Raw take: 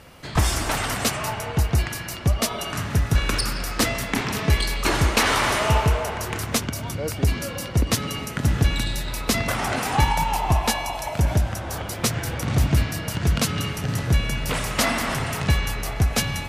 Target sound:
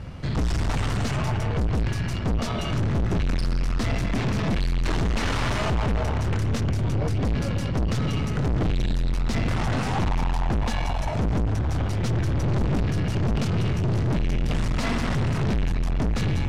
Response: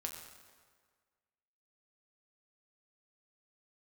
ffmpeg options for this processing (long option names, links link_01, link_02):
-af "bass=frequency=250:gain=14,treble=frequency=4000:gain=10,aeval=exprs='0.562*(abs(mod(val(0)/0.562+3,4)-2)-1)':channel_layout=same,aeval=exprs='(tanh(17.8*val(0)+0.4)-tanh(0.4))/17.8':channel_layout=same,adynamicsmooth=sensitivity=1:basefreq=3100,volume=3.5dB"